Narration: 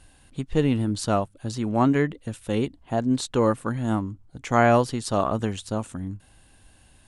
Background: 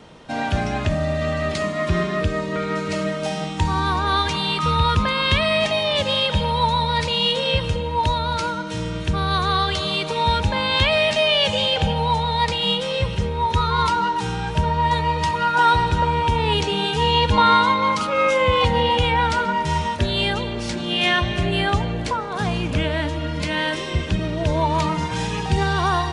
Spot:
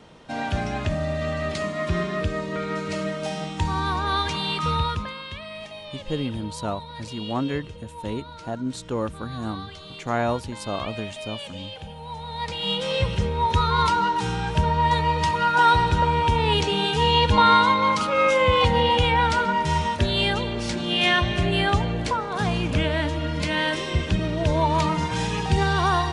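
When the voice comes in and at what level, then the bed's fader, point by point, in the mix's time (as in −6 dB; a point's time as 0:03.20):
5.55 s, −6.0 dB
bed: 0:04.76 −4 dB
0:05.30 −18 dB
0:11.98 −18 dB
0:12.91 −1 dB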